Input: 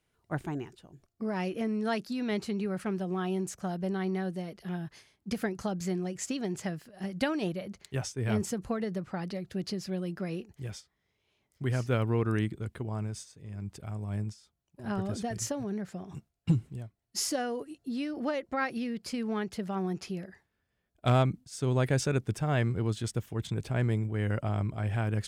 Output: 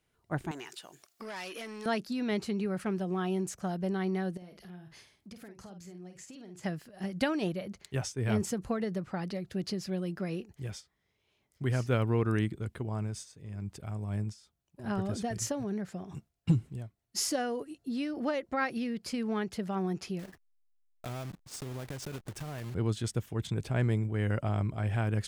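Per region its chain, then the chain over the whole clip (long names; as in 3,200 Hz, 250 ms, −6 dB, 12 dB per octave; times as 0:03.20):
0:00.51–0:01.86: mid-hump overdrive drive 17 dB, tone 5,700 Hz, clips at −22.5 dBFS + spectral tilt +3.5 dB per octave + downward compressor 2.5 to 1, threshold −42 dBFS
0:04.37–0:06.64: downward compressor 4 to 1, threshold −49 dBFS + double-tracking delay 50 ms −8 dB + one half of a high-frequency compander encoder only
0:20.19–0:22.75: one scale factor per block 3 bits + downward compressor 8 to 1, threshold −36 dBFS + slack as between gear wheels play −50 dBFS
whole clip: no processing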